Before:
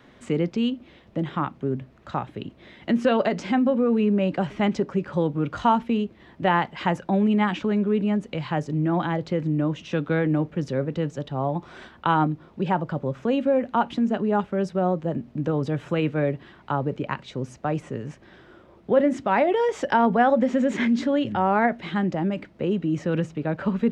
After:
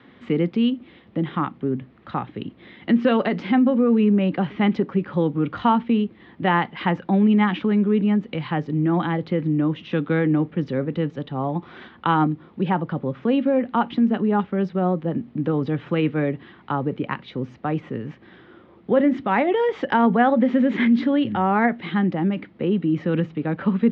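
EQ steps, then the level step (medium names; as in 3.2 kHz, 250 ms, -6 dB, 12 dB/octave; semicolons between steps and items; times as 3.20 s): cabinet simulation 110–3500 Hz, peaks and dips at 140 Hz -4 dB, 400 Hz -3 dB, 620 Hz -10 dB, 950 Hz -4 dB, 1.5 kHz -4 dB, 2.6 kHz -4 dB; +5.0 dB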